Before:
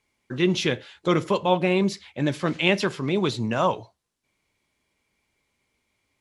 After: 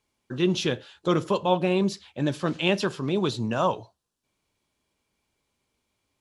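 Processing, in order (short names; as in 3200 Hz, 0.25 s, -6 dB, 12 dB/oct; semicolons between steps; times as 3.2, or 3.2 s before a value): bell 2100 Hz -10.5 dB 0.31 oct; gain -1.5 dB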